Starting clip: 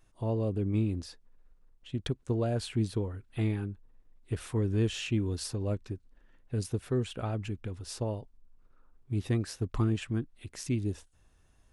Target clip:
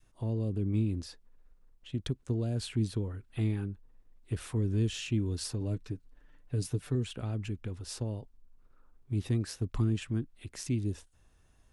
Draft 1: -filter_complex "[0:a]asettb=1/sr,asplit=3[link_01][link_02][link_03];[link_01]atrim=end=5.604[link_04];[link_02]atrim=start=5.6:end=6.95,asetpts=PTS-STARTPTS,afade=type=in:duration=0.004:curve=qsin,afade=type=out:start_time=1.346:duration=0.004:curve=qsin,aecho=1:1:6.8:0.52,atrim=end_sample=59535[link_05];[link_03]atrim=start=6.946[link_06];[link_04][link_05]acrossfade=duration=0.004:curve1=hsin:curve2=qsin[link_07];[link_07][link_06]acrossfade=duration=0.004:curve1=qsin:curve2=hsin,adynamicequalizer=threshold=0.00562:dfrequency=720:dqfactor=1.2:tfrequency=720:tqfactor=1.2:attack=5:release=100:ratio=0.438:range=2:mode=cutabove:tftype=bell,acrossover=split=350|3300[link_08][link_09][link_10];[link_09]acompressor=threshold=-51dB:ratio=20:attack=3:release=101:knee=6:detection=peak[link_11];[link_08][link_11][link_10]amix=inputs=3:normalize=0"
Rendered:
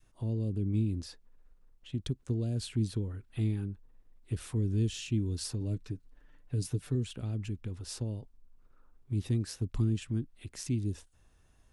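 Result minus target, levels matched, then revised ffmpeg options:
downward compressor: peak gain reduction +8.5 dB
-filter_complex "[0:a]asettb=1/sr,asplit=3[link_01][link_02][link_03];[link_01]atrim=end=5.604[link_04];[link_02]atrim=start=5.6:end=6.95,asetpts=PTS-STARTPTS,afade=type=in:duration=0.004:curve=qsin,afade=type=out:start_time=1.346:duration=0.004:curve=qsin,aecho=1:1:6.8:0.52,atrim=end_sample=59535[link_05];[link_03]atrim=start=6.946[link_06];[link_04][link_05]acrossfade=duration=0.004:curve1=hsin:curve2=qsin[link_07];[link_07][link_06]acrossfade=duration=0.004:curve1=qsin:curve2=hsin,adynamicequalizer=threshold=0.00562:dfrequency=720:dqfactor=1.2:tfrequency=720:tqfactor=1.2:attack=5:release=100:ratio=0.438:range=2:mode=cutabove:tftype=bell,acrossover=split=350|3300[link_08][link_09][link_10];[link_09]acompressor=threshold=-42dB:ratio=20:attack=3:release=101:knee=6:detection=peak[link_11];[link_08][link_11][link_10]amix=inputs=3:normalize=0"

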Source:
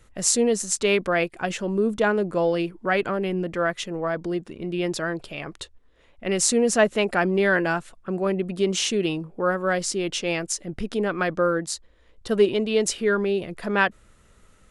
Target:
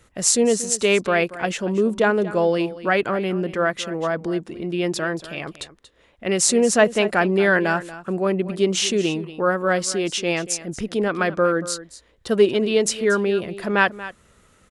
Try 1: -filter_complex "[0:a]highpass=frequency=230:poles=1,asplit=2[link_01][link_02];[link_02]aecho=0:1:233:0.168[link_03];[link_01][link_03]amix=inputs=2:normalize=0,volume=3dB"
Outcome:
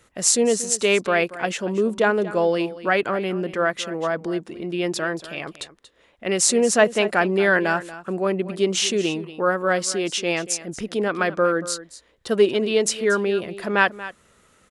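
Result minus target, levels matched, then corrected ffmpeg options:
125 Hz band −2.5 dB
-filter_complex "[0:a]highpass=frequency=82:poles=1,asplit=2[link_01][link_02];[link_02]aecho=0:1:233:0.168[link_03];[link_01][link_03]amix=inputs=2:normalize=0,volume=3dB"

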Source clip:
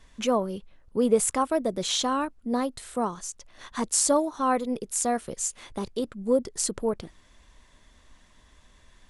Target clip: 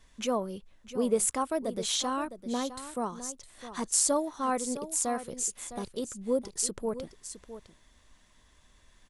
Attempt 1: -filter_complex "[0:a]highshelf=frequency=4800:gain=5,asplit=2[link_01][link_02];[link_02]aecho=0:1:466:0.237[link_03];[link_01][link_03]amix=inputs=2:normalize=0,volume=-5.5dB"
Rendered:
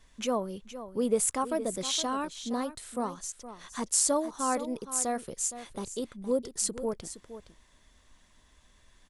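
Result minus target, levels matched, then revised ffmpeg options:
echo 193 ms early
-filter_complex "[0:a]highshelf=frequency=4800:gain=5,asplit=2[link_01][link_02];[link_02]aecho=0:1:659:0.237[link_03];[link_01][link_03]amix=inputs=2:normalize=0,volume=-5.5dB"

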